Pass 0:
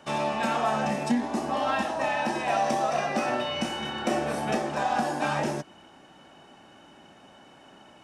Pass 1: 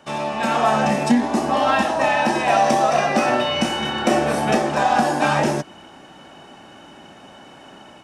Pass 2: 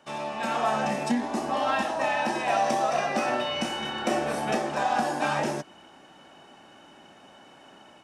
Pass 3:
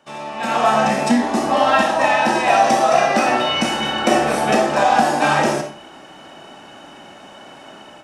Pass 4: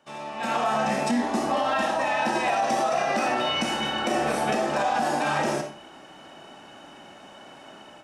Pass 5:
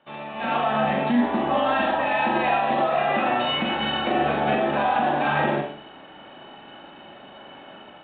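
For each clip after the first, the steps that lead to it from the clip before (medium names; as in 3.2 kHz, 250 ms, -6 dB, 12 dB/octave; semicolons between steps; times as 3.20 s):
level rider gain up to 7 dB; trim +2 dB
bass shelf 190 Hz -6 dB; trim -7.5 dB
level rider gain up to 9 dB; on a send at -5.5 dB: reverberation RT60 0.40 s, pre-delay 10 ms; on the sum: trim +1.5 dB
peak limiter -9.5 dBFS, peak gain reduction 8 dB; trim -6 dB
on a send: flutter echo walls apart 7.1 m, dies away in 0.39 s; on the sum: trim +1.5 dB; G.726 40 kbps 8 kHz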